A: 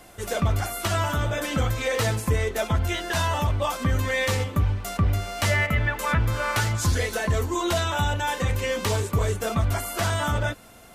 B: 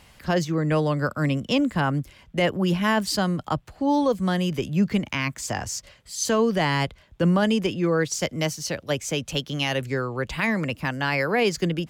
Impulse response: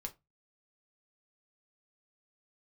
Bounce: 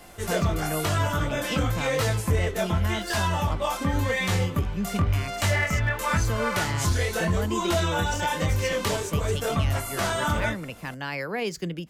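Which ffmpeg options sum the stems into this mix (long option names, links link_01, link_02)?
-filter_complex "[0:a]flanger=delay=20:depth=6:speed=0.94,asoftclip=type=hard:threshold=-17.5dB,volume=2dB,asplit=2[link_01][link_02];[link_02]volume=-7.5dB[link_03];[1:a]highshelf=frequency=10000:gain=6.5,volume=-9dB,asplit=2[link_04][link_05];[link_05]volume=-11dB[link_06];[2:a]atrim=start_sample=2205[link_07];[link_03][link_06]amix=inputs=2:normalize=0[link_08];[link_08][link_07]afir=irnorm=-1:irlink=0[link_09];[link_01][link_04][link_09]amix=inputs=3:normalize=0,alimiter=limit=-15dB:level=0:latency=1:release=472"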